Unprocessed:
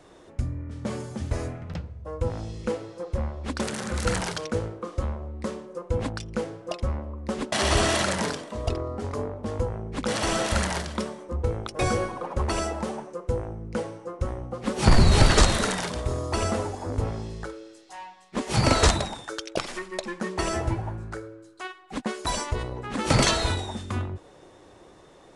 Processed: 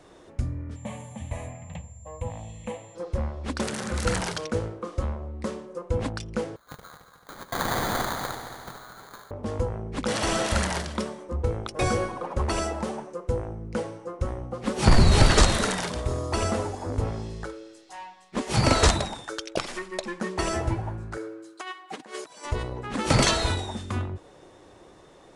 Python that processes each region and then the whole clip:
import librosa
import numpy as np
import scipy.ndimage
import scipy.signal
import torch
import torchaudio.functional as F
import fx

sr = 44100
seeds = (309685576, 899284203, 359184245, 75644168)

y = fx.low_shelf(x, sr, hz=69.0, db=-11.0, at=(0.75, 2.94), fade=0.02)
y = fx.dmg_tone(y, sr, hz=7300.0, level_db=-47.0, at=(0.75, 2.94), fade=0.02)
y = fx.fixed_phaser(y, sr, hz=1400.0, stages=6, at=(0.75, 2.94), fade=0.02)
y = fx.chain(y, sr, fx.cheby1_highpass(hz=1400.0, order=3),
    fx.sample_hold(seeds[0], rate_hz=2700.0, jitter_pct=0),
    fx.echo_heads(ms=73, heads='first and third', feedback_pct=65, wet_db=-12), at=(6.56, 9.31))
y = fx.chain(y, sr, fx.highpass(hz=290.0, slope=12),
    fx.comb(ms=6.4, depth=0.39),
    fx.over_compress(threshold_db=-37.0, ratio=-0.5), at=(21.17, 22.45))